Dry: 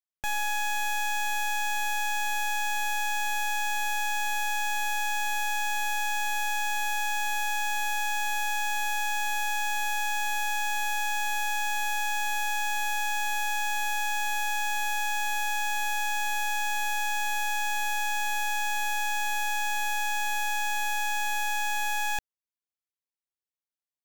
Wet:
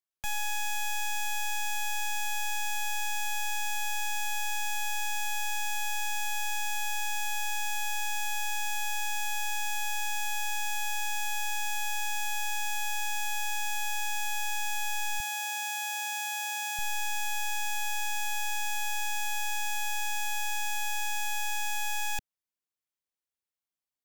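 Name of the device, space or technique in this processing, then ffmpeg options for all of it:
one-band saturation: -filter_complex "[0:a]acrossover=split=200|2300[link_01][link_02][link_03];[link_02]asoftclip=type=tanh:threshold=-36.5dB[link_04];[link_01][link_04][link_03]amix=inputs=3:normalize=0,asettb=1/sr,asplit=3[link_05][link_06][link_07];[link_05]atrim=end=15.204[link_08];[link_06]atrim=start=15.2:end=16.79,asetpts=PTS-STARTPTS,afade=type=in:duration=0.004:curve=qsin,afade=type=out:start_time=1.586:duration=0.004:curve=qsin,highpass=320[link_09];[link_07]atrim=start=16.786[link_10];[link_08][link_09]acrossfade=duration=0.004:curve1=hsin:curve2=qsin[link_11];[link_11][link_10]acrossfade=duration=0.004:curve1=qsin:curve2=hsin"

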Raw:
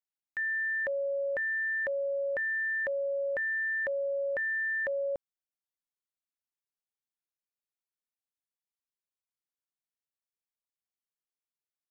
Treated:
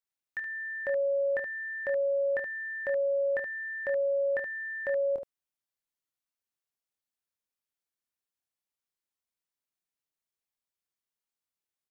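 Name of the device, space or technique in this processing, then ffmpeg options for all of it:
slapback doubling: -filter_complex "[0:a]asplit=3[link_01][link_02][link_03];[link_02]adelay=25,volume=-6dB[link_04];[link_03]adelay=74,volume=-7dB[link_05];[link_01][link_04][link_05]amix=inputs=3:normalize=0"

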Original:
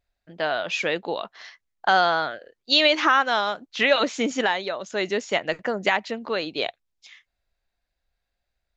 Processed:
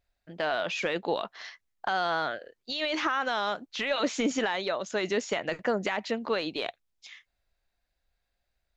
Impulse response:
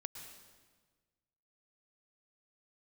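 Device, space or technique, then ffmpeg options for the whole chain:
de-esser from a sidechain: -filter_complex "[0:a]asplit=2[link_01][link_02];[link_02]highpass=frequency=4200:poles=1,apad=whole_len=386344[link_03];[link_01][link_03]sidechaincompress=threshold=-35dB:ratio=6:attack=2:release=21"

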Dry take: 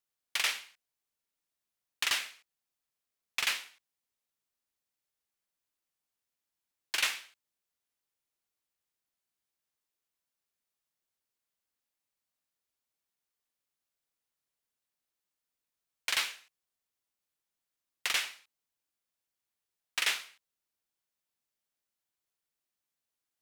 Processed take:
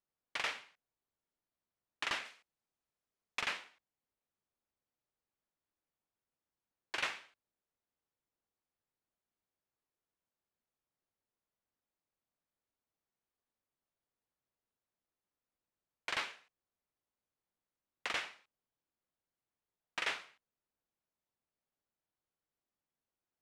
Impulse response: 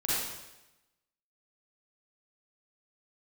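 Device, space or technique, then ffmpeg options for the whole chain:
through cloth: -filter_complex "[0:a]lowpass=8000,highshelf=frequency=2000:gain=-17.5,asettb=1/sr,asplit=3[link_01][link_02][link_03];[link_01]atrim=end=2.254[link_04];[link_02]atrim=start=2.25:end=3.41,asetpts=PTS-STARTPTS,afade=type=in:duration=0.004:curve=qsin,afade=type=out:start_time=1.156:duration=0.004:curve=qsin,highshelf=frequency=4800:gain=8[link_05];[link_03]atrim=start=3.406[link_06];[link_04][link_05]acrossfade=duration=0.004:curve1=hsin:curve2=qsin[link_07];[link_07][link_06]acrossfade=duration=0.004:curve1=qsin:curve2=hsin,volume=3.5dB"

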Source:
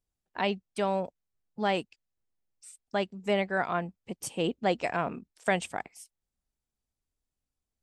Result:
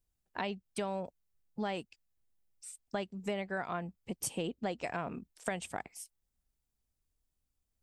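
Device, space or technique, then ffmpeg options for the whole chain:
ASMR close-microphone chain: -af "lowshelf=frequency=120:gain=7,acompressor=threshold=-32dB:ratio=6,highshelf=frequency=9600:gain=7.5,volume=-1dB"

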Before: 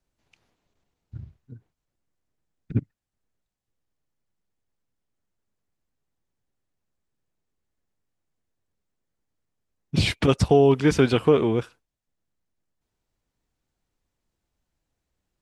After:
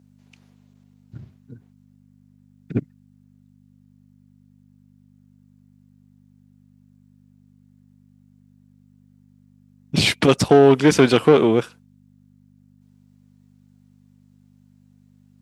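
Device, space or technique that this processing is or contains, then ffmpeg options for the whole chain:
valve amplifier with mains hum: -af "aeval=exprs='(tanh(4.47*val(0)+0.45)-tanh(0.45))/4.47':channel_layout=same,aeval=exprs='val(0)+0.00251*(sin(2*PI*50*n/s)+sin(2*PI*2*50*n/s)/2+sin(2*PI*3*50*n/s)/3+sin(2*PI*4*50*n/s)/4+sin(2*PI*5*50*n/s)/5)':channel_layout=same,highpass=160,highshelf=frequency=5800:gain=4,volume=8dB"

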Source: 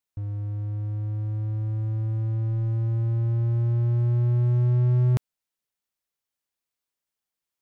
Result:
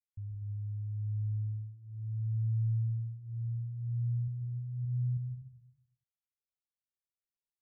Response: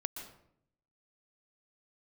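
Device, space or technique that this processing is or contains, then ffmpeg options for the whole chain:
club heard from the street: -filter_complex "[0:a]asettb=1/sr,asplit=3[link_01][link_02][link_03];[link_01]atrim=end=4.274[link_04];[link_02]atrim=start=4.27:end=4.85,asetpts=PTS-STARTPTS,afade=type=in:duration=0.004:curve=qsin,afade=type=out:start_time=0.576:duration=0.004:curve=qsin,aecho=1:1:6:0.55,atrim=end_sample=25578[link_05];[link_03]atrim=start=4.846[link_06];[link_04][link_05]acrossfade=duration=0.004:curve1=hsin:curve2=qsin[link_07];[link_07][link_06]acrossfade=duration=0.004:curve1=qsin:curve2=hsin,alimiter=limit=-20.5dB:level=0:latency=1,lowpass=frequency=150:width=0.5412,lowpass=frequency=150:width=1.3066[link_08];[1:a]atrim=start_sample=2205[link_09];[link_08][link_09]afir=irnorm=-1:irlink=0,volume=-8.5dB"

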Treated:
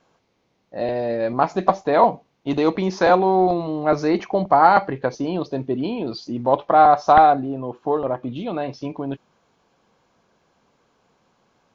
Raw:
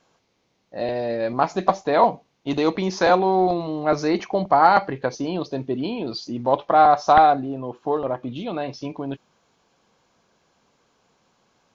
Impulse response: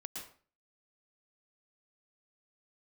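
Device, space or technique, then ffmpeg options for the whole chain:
behind a face mask: -af "highshelf=frequency=3200:gain=-7.5,volume=2dB"

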